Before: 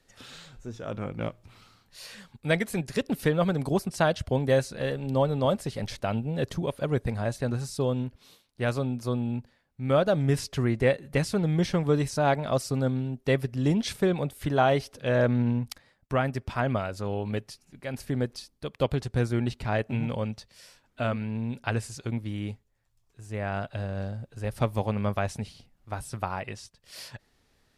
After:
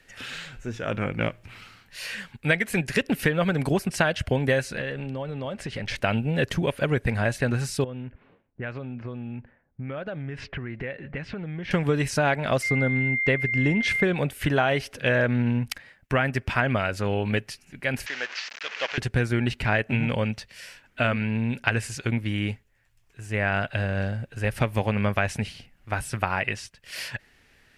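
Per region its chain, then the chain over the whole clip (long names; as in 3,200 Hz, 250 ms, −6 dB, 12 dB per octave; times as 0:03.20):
0:04.78–0:05.96: high-frequency loss of the air 61 metres + downward compressor 12 to 1, threshold −33 dBFS
0:07.84–0:11.71: low-pass filter 2,800 Hz + low-pass that shuts in the quiet parts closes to 590 Hz, open at −20 dBFS + downward compressor 16 to 1, threshold −35 dBFS
0:12.62–0:14.03: high-shelf EQ 4,400 Hz −10.5 dB + steady tone 2,100 Hz −37 dBFS
0:18.06–0:18.98: linear delta modulator 32 kbit/s, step −36.5 dBFS + high-pass filter 980 Hz
whole clip: flat-topped bell 2,100 Hz +9 dB 1.2 octaves; downward compressor, threshold −24 dBFS; level +5.5 dB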